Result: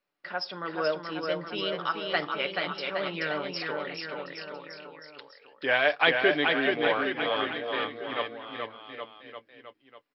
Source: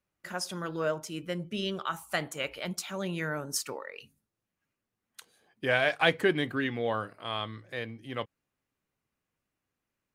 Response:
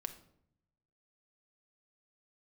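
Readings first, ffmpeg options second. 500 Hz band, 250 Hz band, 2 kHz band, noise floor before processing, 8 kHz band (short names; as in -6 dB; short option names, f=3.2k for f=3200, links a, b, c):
+3.5 dB, +0.5 dB, +5.0 dB, under -85 dBFS, under -25 dB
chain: -filter_complex "[0:a]highpass=320,lowpass=5.5k,aecho=1:1:6.9:0.36,asplit=2[a][b];[b]aecho=0:1:430|817|1165|1479|1761:0.631|0.398|0.251|0.158|0.1[c];[a][c]amix=inputs=2:normalize=0,volume=2.5dB" -ar 44100 -c:a mp2 -b:a 48k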